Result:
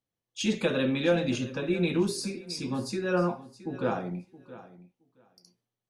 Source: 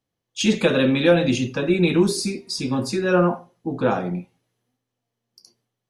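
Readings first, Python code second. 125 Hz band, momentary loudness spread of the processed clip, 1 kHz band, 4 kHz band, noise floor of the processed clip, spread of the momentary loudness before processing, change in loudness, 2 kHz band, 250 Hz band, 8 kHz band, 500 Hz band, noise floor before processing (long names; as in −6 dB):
−8.5 dB, 17 LU, −8.5 dB, −8.5 dB, below −85 dBFS, 12 LU, −8.5 dB, −8.5 dB, −8.5 dB, −8.5 dB, −8.5 dB, −82 dBFS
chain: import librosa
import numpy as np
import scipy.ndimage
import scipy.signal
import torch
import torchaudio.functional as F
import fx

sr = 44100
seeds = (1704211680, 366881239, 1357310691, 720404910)

y = fx.echo_feedback(x, sr, ms=670, feedback_pct=15, wet_db=-17.0)
y = y * librosa.db_to_amplitude(-8.5)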